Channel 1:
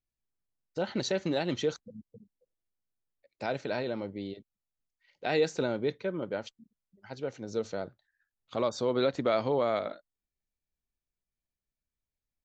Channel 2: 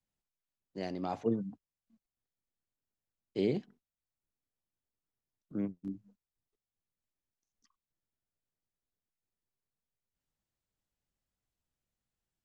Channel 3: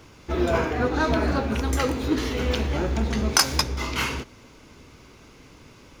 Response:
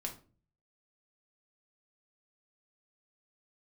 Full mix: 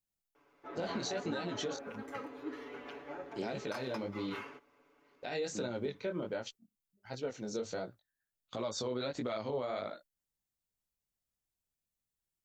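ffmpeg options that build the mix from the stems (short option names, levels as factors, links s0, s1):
-filter_complex "[0:a]agate=range=0.224:threshold=0.00251:ratio=16:detection=peak,flanger=delay=16.5:depth=7.5:speed=1.4,volume=1.26[s0];[1:a]volume=0.501[s1];[2:a]acrossover=split=300 2300:gain=0.0708 1 0.141[s2][s3][s4];[s2][s3][s4]amix=inputs=3:normalize=0,aecho=1:1:7:0.92,adelay=350,volume=0.141[s5];[s0][s1]amix=inputs=2:normalize=0,highshelf=f=6100:g=10.5,alimiter=level_in=1.19:limit=0.0631:level=0:latency=1:release=113,volume=0.841,volume=1[s6];[s5][s6]amix=inputs=2:normalize=0,alimiter=level_in=1.5:limit=0.0631:level=0:latency=1:release=209,volume=0.668"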